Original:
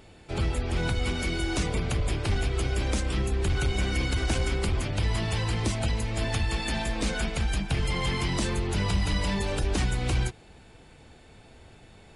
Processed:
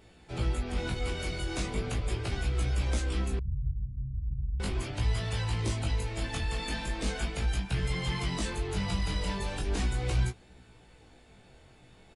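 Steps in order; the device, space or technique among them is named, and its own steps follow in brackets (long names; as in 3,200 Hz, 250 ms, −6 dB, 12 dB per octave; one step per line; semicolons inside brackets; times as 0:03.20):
double-tracked vocal (double-tracking delay 16 ms −7 dB; chorus effect 0.38 Hz, delay 16.5 ms, depth 6 ms)
0:03.39–0:04.60: inverse Chebyshev low-pass filter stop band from 620 Hz, stop band 70 dB
level −2.5 dB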